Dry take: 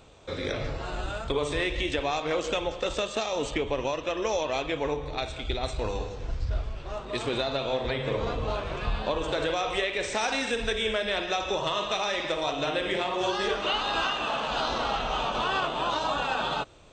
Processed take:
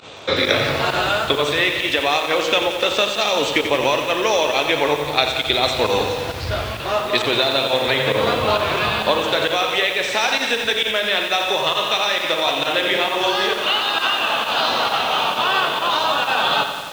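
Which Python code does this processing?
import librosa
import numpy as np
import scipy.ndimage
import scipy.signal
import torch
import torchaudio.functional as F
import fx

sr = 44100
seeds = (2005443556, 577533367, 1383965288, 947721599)

y = scipy.signal.sosfilt(scipy.signal.butter(4, 86.0, 'highpass', fs=sr, output='sos'), x)
y = fx.high_shelf(y, sr, hz=7500.0, db=-8.5)
y = fx.volume_shaper(y, sr, bpm=133, per_beat=1, depth_db=-20, release_ms=68.0, shape='fast start')
y = fx.curve_eq(y, sr, hz=(130.0, 3900.0, 8600.0), db=(0, 13, 6))
y = fx.rider(y, sr, range_db=10, speed_s=0.5)
y = fx.echo_crushed(y, sr, ms=89, feedback_pct=80, bits=6, wet_db=-8.5)
y = y * 10.0 ** (2.0 / 20.0)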